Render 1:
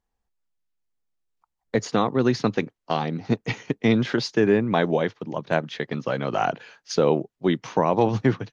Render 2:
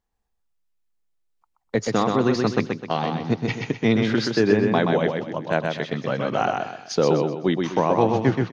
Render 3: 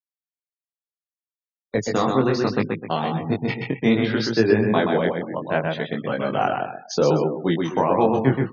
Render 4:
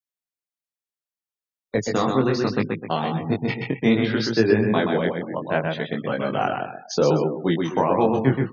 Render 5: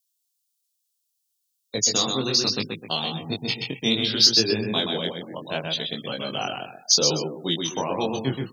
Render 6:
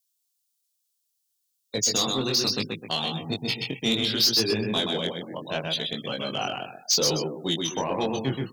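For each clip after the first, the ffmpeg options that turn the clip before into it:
ffmpeg -i in.wav -af "aecho=1:1:127|254|381|508|635:0.631|0.227|0.0818|0.0294|0.0106" out.wav
ffmpeg -i in.wav -af "afftfilt=real='re*gte(hypot(re,im),0.0178)':imag='im*gte(hypot(re,im),0.0178)':win_size=1024:overlap=0.75,flanger=delay=17.5:depth=5:speed=0.67,volume=3.5dB" out.wav
ffmpeg -i in.wav -af "adynamicequalizer=threshold=0.0355:dfrequency=760:dqfactor=0.97:tfrequency=760:tqfactor=0.97:attack=5:release=100:ratio=0.375:range=2:mode=cutabove:tftype=bell" out.wav
ffmpeg -i in.wav -af "aexciter=amount=10.4:drive=6.3:freq=2900,volume=-7dB" out.wav
ffmpeg -i in.wav -af "asoftclip=type=tanh:threshold=-16dB" out.wav

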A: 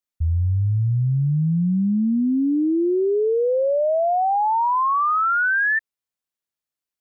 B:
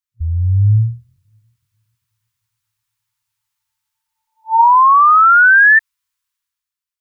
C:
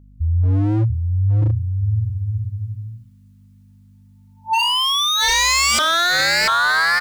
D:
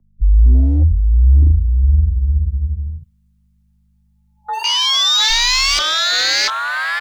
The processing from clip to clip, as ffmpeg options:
ffmpeg -i in.wav -af "afftfilt=real='re*(1-between(b*sr/4096,110,890))':imag='im*(1-between(b*sr/4096,110,890))':win_size=4096:overlap=0.75,bandreject=frequency=225.4:width_type=h:width=4,bandreject=frequency=450.8:width_type=h:width=4,bandreject=frequency=676.2:width_type=h:width=4,bandreject=frequency=901.6:width_type=h:width=4,dynaudnorm=framelen=100:gausssize=13:maxgain=12.5dB" out.wav
ffmpeg -i in.wav -filter_complex "[0:a]aeval=exprs='val(0)+0.00562*(sin(2*PI*50*n/s)+sin(2*PI*2*50*n/s)/2+sin(2*PI*3*50*n/s)/3+sin(2*PI*4*50*n/s)/4+sin(2*PI*5*50*n/s)/5)':channel_layout=same,asplit=2[link_01][link_02];[link_02]aecho=0:1:690|1208|1596|1887|2105:0.631|0.398|0.251|0.158|0.1[link_03];[link_01][link_03]amix=inputs=2:normalize=0,aeval=exprs='0.251*(abs(mod(val(0)/0.251+3,4)-2)-1)':channel_layout=same" out.wav
ffmpeg -i in.wav -filter_complex "[0:a]afwtdn=0.112,acrossover=split=140|3000[link_01][link_02][link_03];[link_02]acompressor=threshold=-32dB:ratio=4[link_04];[link_01][link_04][link_03]amix=inputs=3:normalize=0,afreqshift=-33,volume=8dB" out.wav

